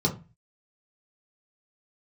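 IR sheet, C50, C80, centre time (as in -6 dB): 13.0 dB, 19.5 dB, 12 ms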